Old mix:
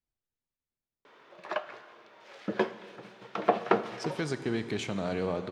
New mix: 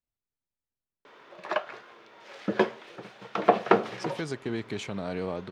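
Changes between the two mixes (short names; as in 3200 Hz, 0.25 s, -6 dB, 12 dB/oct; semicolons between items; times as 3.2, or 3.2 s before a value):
background +5.0 dB; reverb: off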